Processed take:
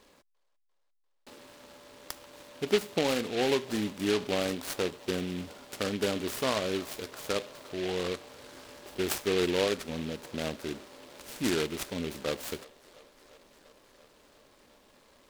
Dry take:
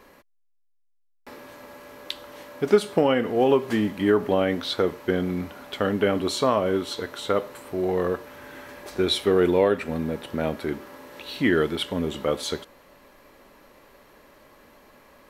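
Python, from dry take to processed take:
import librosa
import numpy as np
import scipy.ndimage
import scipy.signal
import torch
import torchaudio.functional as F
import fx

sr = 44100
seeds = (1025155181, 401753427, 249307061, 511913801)

p1 = x + fx.echo_wet_bandpass(x, sr, ms=346, feedback_pct=76, hz=1100.0, wet_db=-19.5, dry=0)
p2 = fx.noise_mod_delay(p1, sr, seeds[0], noise_hz=2600.0, depth_ms=0.12)
y = p2 * librosa.db_to_amplitude(-8.0)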